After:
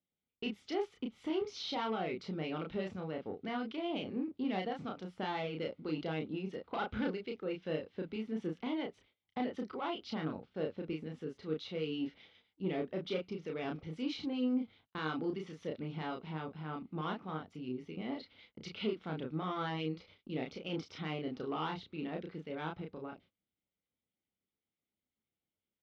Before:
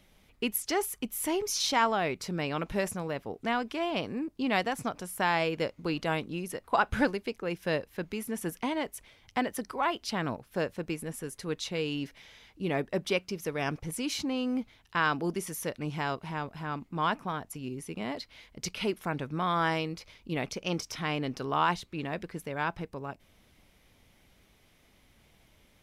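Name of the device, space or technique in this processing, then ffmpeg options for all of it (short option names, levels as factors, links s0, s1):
guitar amplifier with harmonic tremolo: -filter_complex "[0:a]acrossover=split=1500[s0][s1];[s0]aeval=exprs='val(0)*(1-0.5/2+0.5/2*cos(2*PI*7.9*n/s))':c=same[s2];[s1]aeval=exprs='val(0)*(1-0.5/2-0.5/2*cos(2*PI*7.9*n/s))':c=same[s3];[s2][s3]amix=inputs=2:normalize=0,asoftclip=type=tanh:threshold=0.0473,highpass=100,equalizer=f=130:t=q:w=4:g=-7,equalizer=f=630:t=q:w=4:g=-6,equalizer=f=1000:t=q:w=4:g=-9,equalizer=f=1700:t=q:w=4:g=-10,equalizer=f=2500:t=q:w=4:g=-6,lowpass=f=3600:w=0.5412,lowpass=f=3600:w=1.3066,agate=range=0.0501:threshold=0.001:ratio=16:detection=peak,asplit=2[s4][s5];[s5]adelay=32,volume=0.708[s6];[s4][s6]amix=inputs=2:normalize=0,volume=0.891"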